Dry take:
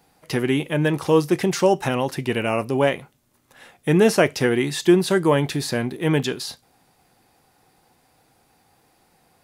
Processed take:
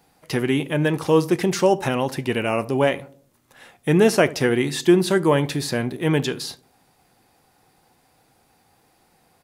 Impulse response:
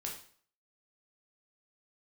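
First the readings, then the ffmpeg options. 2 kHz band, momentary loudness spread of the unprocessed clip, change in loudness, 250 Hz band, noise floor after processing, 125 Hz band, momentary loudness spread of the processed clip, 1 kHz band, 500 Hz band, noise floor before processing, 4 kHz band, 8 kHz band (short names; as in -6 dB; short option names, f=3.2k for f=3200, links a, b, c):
0.0 dB, 9 LU, 0.0 dB, 0.0 dB, -62 dBFS, 0.0 dB, 9 LU, 0.0 dB, 0.0 dB, -62 dBFS, 0.0 dB, 0.0 dB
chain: -filter_complex "[0:a]asplit=2[a][b];[b]adelay=75,lowpass=f=810:p=1,volume=-16.5dB,asplit=2[c][d];[d]adelay=75,lowpass=f=810:p=1,volume=0.53,asplit=2[e][f];[f]adelay=75,lowpass=f=810:p=1,volume=0.53,asplit=2[g][h];[h]adelay=75,lowpass=f=810:p=1,volume=0.53,asplit=2[i][j];[j]adelay=75,lowpass=f=810:p=1,volume=0.53[k];[a][c][e][g][i][k]amix=inputs=6:normalize=0"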